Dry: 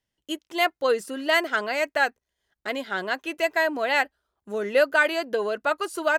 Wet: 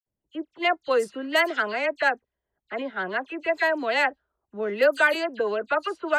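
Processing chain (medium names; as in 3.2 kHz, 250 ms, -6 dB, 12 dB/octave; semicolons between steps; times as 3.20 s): phase dispersion lows, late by 64 ms, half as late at 2.7 kHz; level-controlled noise filter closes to 750 Hz, open at -17 dBFS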